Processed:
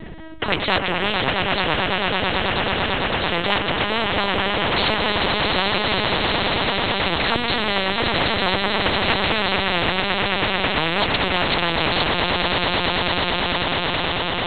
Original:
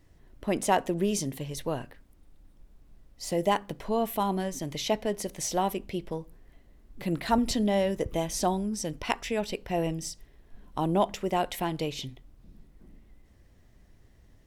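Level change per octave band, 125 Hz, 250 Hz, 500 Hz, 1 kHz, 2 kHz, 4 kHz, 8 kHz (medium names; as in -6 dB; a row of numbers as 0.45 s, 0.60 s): +8.5 dB, +5.0 dB, +7.0 dB, +10.5 dB, +21.5 dB, +20.0 dB, under -20 dB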